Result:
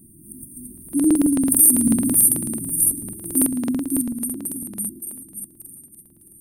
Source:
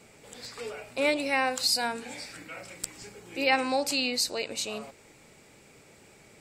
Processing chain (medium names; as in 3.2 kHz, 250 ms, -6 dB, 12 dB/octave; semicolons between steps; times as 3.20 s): Doppler pass-by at 1.93 s, 13 m/s, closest 4.9 m; brick-wall FIR band-stop 370–8600 Hz; treble shelf 3.9 kHz +7 dB; hum notches 60/120/180/240/300 Hz; thinning echo 579 ms, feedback 50%, high-pass 510 Hz, level -4 dB; loudness maximiser +26.5 dB; crackling interface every 0.11 s, samples 2048, repeat, from 0.73 s; trim -1 dB